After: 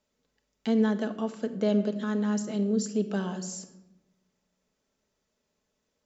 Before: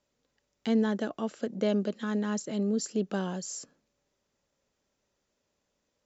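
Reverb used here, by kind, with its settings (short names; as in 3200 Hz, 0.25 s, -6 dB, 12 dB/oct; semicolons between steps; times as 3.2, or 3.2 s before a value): shoebox room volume 3600 m³, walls furnished, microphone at 1.5 m; gain -1 dB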